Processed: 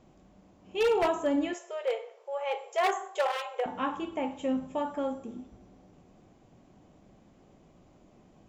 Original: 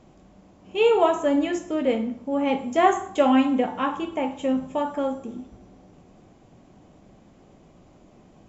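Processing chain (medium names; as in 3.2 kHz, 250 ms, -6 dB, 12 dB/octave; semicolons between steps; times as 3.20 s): wavefolder -13.5 dBFS; 1.53–3.66 s: brick-wall FIR high-pass 370 Hz; trim -6 dB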